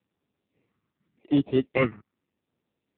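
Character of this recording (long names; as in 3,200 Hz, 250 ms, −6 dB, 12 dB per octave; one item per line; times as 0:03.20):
aliases and images of a low sample rate 1,600 Hz, jitter 0%
phaser sweep stages 4, 0.86 Hz, lowest notch 580–1,500 Hz
AMR narrowband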